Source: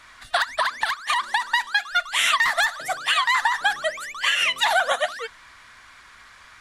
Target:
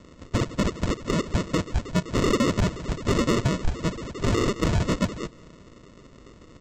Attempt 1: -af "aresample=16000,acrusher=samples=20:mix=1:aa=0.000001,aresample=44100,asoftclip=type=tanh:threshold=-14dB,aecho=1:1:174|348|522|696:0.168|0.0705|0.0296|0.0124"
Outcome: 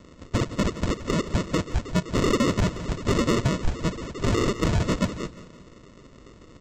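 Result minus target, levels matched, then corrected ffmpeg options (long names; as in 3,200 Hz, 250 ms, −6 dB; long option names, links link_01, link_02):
echo-to-direct +10 dB
-af "aresample=16000,acrusher=samples=20:mix=1:aa=0.000001,aresample=44100,asoftclip=type=tanh:threshold=-14dB,aecho=1:1:174|348:0.0531|0.0223"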